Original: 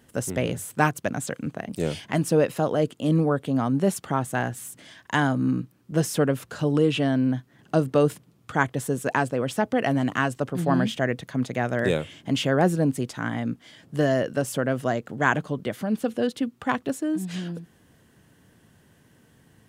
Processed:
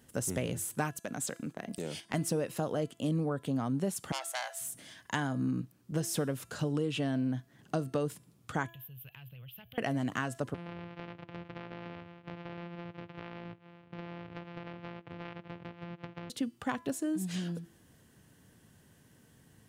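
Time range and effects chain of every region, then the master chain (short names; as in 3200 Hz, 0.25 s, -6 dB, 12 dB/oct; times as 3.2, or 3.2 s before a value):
0.99–2.14 HPF 170 Hz + gate -41 dBFS, range -10 dB + compressor 3:1, threshold -29 dBFS
4.12–4.61 steep high-pass 550 Hz 72 dB/oct + core saturation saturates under 4000 Hz
8.68–9.78 EQ curve 130 Hz 0 dB, 270 Hz -28 dB, 1300 Hz -17 dB, 1900 Hz -12 dB, 2900 Hz +7 dB, 6300 Hz -29 dB, 9200 Hz -27 dB, 13000 Hz +14 dB + compressor 16:1, threshold -42 dBFS + mismatched tape noise reduction encoder only
10.54–16.3 sample sorter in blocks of 256 samples + elliptic band-pass 100–2800 Hz, stop band 50 dB + compressor 8:1, threshold -34 dBFS
whole clip: compressor 4:1, threshold -24 dBFS; tone controls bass +2 dB, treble +5 dB; de-hum 335.7 Hz, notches 39; gain -5.5 dB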